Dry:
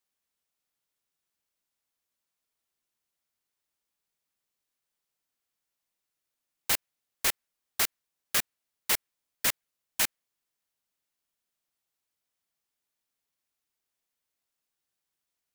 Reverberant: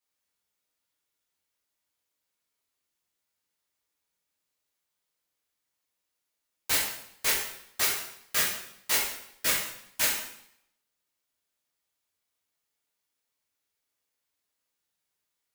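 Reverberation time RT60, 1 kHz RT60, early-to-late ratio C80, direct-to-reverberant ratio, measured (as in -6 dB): 0.70 s, 0.70 s, 6.0 dB, -6.5 dB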